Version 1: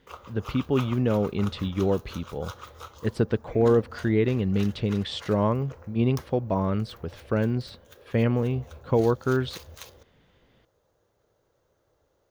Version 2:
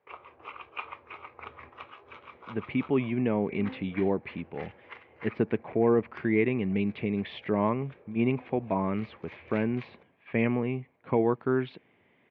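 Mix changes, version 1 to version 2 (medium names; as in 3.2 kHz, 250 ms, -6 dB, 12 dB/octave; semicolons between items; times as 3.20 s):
speech: entry +2.20 s; master: add cabinet simulation 190–2500 Hz, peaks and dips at 520 Hz -7 dB, 1.4 kHz -7 dB, 2.3 kHz +10 dB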